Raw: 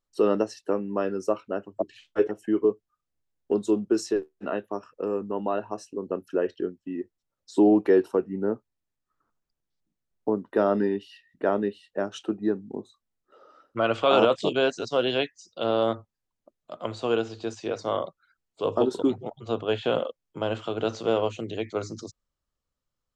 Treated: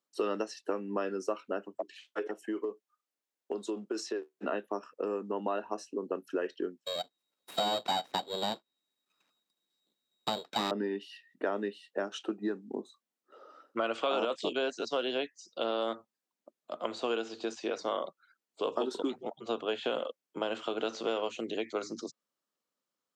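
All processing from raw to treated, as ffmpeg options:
ffmpeg -i in.wav -filter_complex "[0:a]asettb=1/sr,asplit=3[link_01][link_02][link_03];[link_01]atrim=end=1.754[link_04];[link_02]atrim=start=1.75:end=4.34,asetpts=PTS-STARTPTS,afade=type=in:duration=0.004:curve=qsin,afade=type=out:start_time=2.586:duration=0.004:curve=qsin,highpass=frequency=510:poles=1,acompressor=threshold=-27dB:ratio=6:attack=3.2:release=140:knee=1:detection=peak[link_05];[link_03]atrim=start=4.336[link_06];[link_04][link_05]acrossfade=duration=0.004:curve1=hsin:curve2=qsin[link_07];[link_07][link_06]acrossfade=duration=0.004:curve1=qsin:curve2=hsin,asettb=1/sr,asplit=3[link_08][link_09][link_10];[link_08]atrim=end=6.844[link_11];[link_09]atrim=start=6.84:end=10.71,asetpts=PTS-STARTPTS,afade=type=in:duration=0.004:curve=qsin,afade=type=out:start_time=3.866:duration=0.004:curve=qsin,aeval=exprs='val(0)*sin(2*PI*1900*n/s)':channel_layout=same,acontrast=48,aeval=exprs='abs(val(0))':channel_layout=same[link_12];[link_10]atrim=start=10.706[link_13];[link_11][link_12]acrossfade=duration=0.004:curve1=hsin:curve2=qsin[link_14];[link_14][link_13]acrossfade=duration=0.004:curve1=qsin:curve2=hsin,highpass=frequency=210:width=0.5412,highpass=frequency=210:width=1.3066,acrossover=split=1200|5900[link_15][link_16][link_17];[link_15]acompressor=threshold=-31dB:ratio=4[link_18];[link_16]acompressor=threshold=-37dB:ratio=4[link_19];[link_17]acompressor=threshold=-56dB:ratio=4[link_20];[link_18][link_19][link_20]amix=inputs=3:normalize=0" out.wav

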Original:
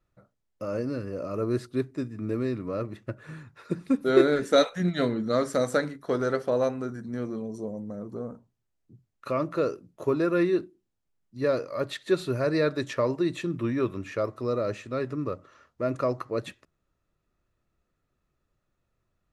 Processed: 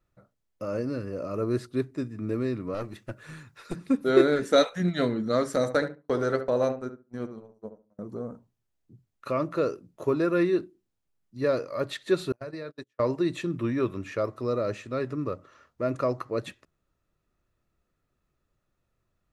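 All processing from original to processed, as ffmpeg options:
ffmpeg -i in.wav -filter_complex "[0:a]asettb=1/sr,asplit=3[link_01][link_02][link_03];[link_01]atrim=end=2.744[link_04];[link_02]atrim=start=2.74:end=3.76,asetpts=PTS-STARTPTS,afade=type=in:duration=0.004:curve=qsin,afade=type=out:start_time=1.016:duration=0.004:curve=qsin,highshelf=frequency=2300:gain=10.5,aeval=exprs='(tanh(15.8*val(0)+0.55)-tanh(0.55))/15.8':channel_layout=same[link_05];[link_03]atrim=start=3.756[link_06];[link_04][link_05]acrossfade=duration=0.004:curve1=hsin:curve2=qsin[link_07];[link_07][link_06]acrossfade=duration=0.004:curve1=qsin:curve2=hsin,asettb=1/sr,asplit=3[link_08][link_09][link_10];[link_08]atrim=end=5.564[link_11];[link_09]atrim=start=5.56:end=7.99,asetpts=PTS-STARTPTS,afade=type=in:duration=0.004:curve=qsin,afade=type=out:start_time=2.426:duration=0.004:curve=qsin,agate=range=-40dB:threshold=-32dB:ratio=16:release=100:detection=peak,asplit=2[link_12][link_13];[link_13]adelay=70,lowpass=frequency=1500:poles=1,volume=-9dB,asplit=2[link_14][link_15];[link_15]adelay=70,lowpass=frequency=1500:poles=1,volume=0.19,asplit=2[link_16][link_17];[link_17]adelay=70,lowpass=frequency=1500:poles=1,volume=0.19[link_18];[link_12][link_14][link_16][link_18]amix=inputs=4:normalize=0,atrim=end_sample=107163[link_19];[link_10]atrim=start=7.986[link_20];[link_11][link_19]acrossfade=duration=0.004:curve1=hsin:curve2=qsin[link_21];[link_21][link_20]acrossfade=duration=0.004:curve1=qsin:curve2=hsin,asettb=1/sr,asplit=3[link_22][link_23][link_24];[link_22]atrim=end=12.324[link_25];[link_23]atrim=start=12.32:end=13,asetpts=PTS-STARTPTS,afade=type=in:duration=0.004:curve=qsin,afade=type=out:start_time=0.676:duration=0.004:curve=qsin,bandreject=frequency=60:width_type=h:width=6,bandreject=frequency=120:width_type=h:width=6,bandreject=frequency=180:width_type=h:width=6,bandreject=frequency=240:width_type=h:width=6,bandreject=frequency=300:width_type=h:width=6,bandreject=frequency=360:width_type=h:width=6,bandreject=frequency=420:width_type=h:width=6,bandreject=frequency=480:width_type=h:width=6,bandreject=frequency=540:width_type=h:width=6,agate=range=-43dB:threshold=-28dB:ratio=16:release=100:detection=peak,acompressor=threshold=-34dB:ratio=8:attack=3.2:release=140:knee=1:detection=peak[link_26];[link_24]atrim=start=12.996[link_27];[link_25][link_26]acrossfade=duration=0.004:curve1=hsin:curve2=qsin[link_28];[link_28][link_27]acrossfade=duration=0.004:curve1=qsin:curve2=hsin" out.wav

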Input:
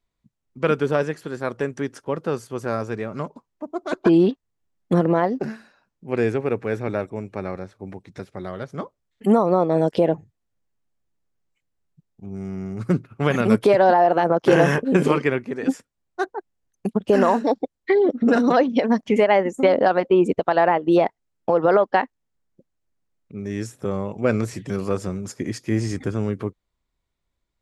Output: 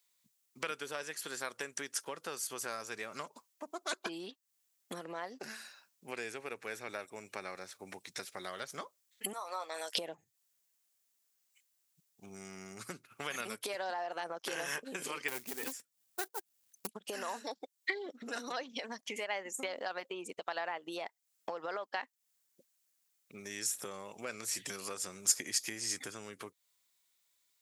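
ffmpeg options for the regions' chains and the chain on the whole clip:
ffmpeg -i in.wav -filter_complex "[0:a]asettb=1/sr,asplit=3[link_01][link_02][link_03];[link_01]atrim=end=9.334[link_04];[link_02]atrim=start=9.33:end=9.95,asetpts=PTS-STARTPTS,afade=type=in:duration=0.004:curve=qsin,afade=type=out:start_time=0.616:duration=0.004:curve=qsin,highpass=910,asplit=2[link_05][link_06];[link_06]adelay=13,volume=-9.5dB[link_07];[link_05][link_07]amix=inputs=2:normalize=0,atrim=end_sample=27342[link_08];[link_03]atrim=start=9.946[link_09];[link_04][link_08]acrossfade=duration=0.004:curve1=hsin:curve2=qsin[link_10];[link_10][link_09]acrossfade=duration=0.004:curve1=qsin:curve2=hsin,asettb=1/sr,asplit=3[link_11][link_12][link_13];[link_11]atrim=end=15.284[link_14];[link_12]atrim=start=15.28:end=16.87,asetpts=PTS-STARTPTS,afade=type=in:duration=0.004:curve=qsin,afade=type=out:start_time=1.586:duration=0.004:curve=qsin,lowshelf=frequency=460:gain=10.5,aeval=exprs='(tanh(3.98*val(0)+0.5)-tanh(0.5))/3.98':channel_layout=same,acrusher=bits=6:mode=log:mix=0:aa=0.000001[link_15];[link_13]atrim=start=16.866[link_16];[link_14][link_15]acrossfade=duration=0.004:curve1=hsin:curve2=qsin[link_17];[link_17][link_16]acrossfade=duration=0.004:curve1=qsin:curve2=hsin,acompressor=threshold=-31dB:ratio=6,aderivative,volume=14dB" out.wav

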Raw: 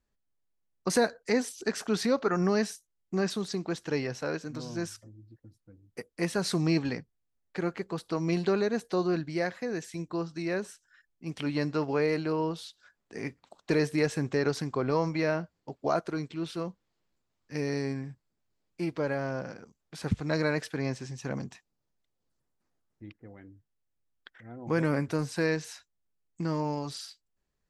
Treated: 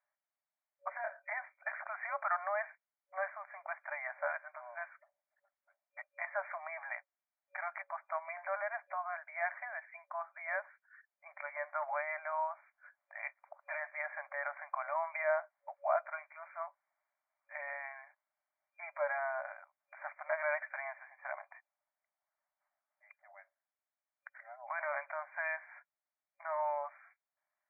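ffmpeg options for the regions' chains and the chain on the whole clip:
ffmpeg -i in.wav -filter_complex "[0:a]asettb=1/sr,asplit=3[link_01][link_02][link_03];[link_01]atrim=end=0.894[link_04];[link_02]atrim=start=0.89:end=1.32,asetpts=PTS-STARTPTS,afade=type=in:duration=0.004:curve=qsin,afade=type=out:start_time=0.426:duration=0.004:curve=qsin,asplit=2[link_05][link_06];[link_06]adelay=25,volume=-4dB[link_07];[link_05][link_07]amix=inputs=2:normalize=0,atrim=end_sample=18963,acompressor=threshold=-33dB:ratio=4:attack=3.2:release=140:knee=1:detection=peak[link_08];[link_03]atrim=start=1.316[link_09];[link_04][link_08]acrossfade=duration=0.004:curve1=hsin:curve2=qsin[link_10];[link_10][link_09]acrossfade=duration=0.004:curve1=qsin:curve2=hsin,alimiter=limit=-20dB:level=0:latency=1:release=60,afftfilt=real='re*between(b*sr/4096,570,2400)':imag='im*between(b*sr/4096,570,2400)':win_size=4096:overlap=0.75,volume=1.5dB" out.wav

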